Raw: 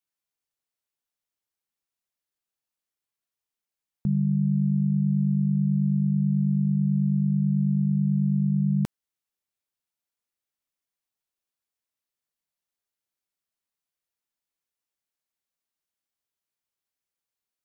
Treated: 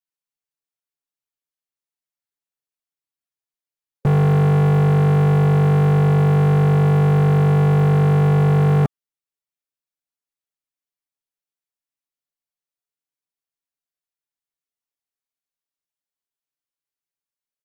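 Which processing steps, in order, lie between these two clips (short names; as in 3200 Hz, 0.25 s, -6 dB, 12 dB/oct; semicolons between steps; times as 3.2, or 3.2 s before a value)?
spectral gate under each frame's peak -25 dB strong; comb 7.1 ms, depth 90%; sample leveller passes 5; gain +1.5 dB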